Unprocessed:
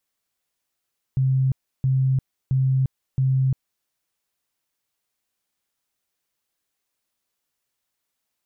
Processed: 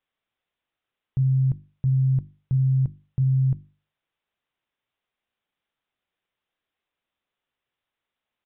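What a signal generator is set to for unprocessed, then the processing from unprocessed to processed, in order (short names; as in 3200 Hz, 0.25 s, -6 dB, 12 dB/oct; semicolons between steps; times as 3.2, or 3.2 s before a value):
tone bursts 132 Hz, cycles 46, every 0.67 s, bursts 4, -16.5 dBFS
downsampling 8000 Hz; notches 50/100/150/200/250/300/350 Hz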